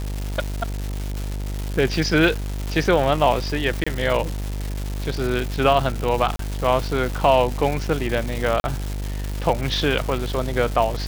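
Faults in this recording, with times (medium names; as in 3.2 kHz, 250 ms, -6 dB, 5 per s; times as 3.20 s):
buzz 50 Hz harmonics 19 -27 dBFS
crackle 470 per s -25 dBFS
3.84–3.87 s: dropout 25 ms
6.36–6.39 s: dropout 33 ms
8.60–8.64 s: dropout 41 ms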